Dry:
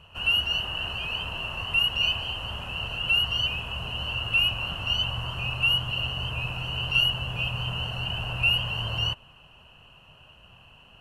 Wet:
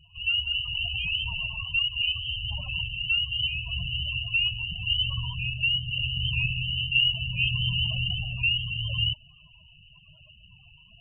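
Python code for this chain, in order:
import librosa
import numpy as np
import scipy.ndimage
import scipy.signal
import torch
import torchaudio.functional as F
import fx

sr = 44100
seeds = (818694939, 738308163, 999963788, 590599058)

y = fx.rider(x, sr, range_db=4, speed_s=0.5)
y = fx.spec_topn(y, sr, count=16)
y = fx.lowpass_res(y, sr, hz=5100.0, q=4.9, at=(6.23, 7.98), fade=0.02)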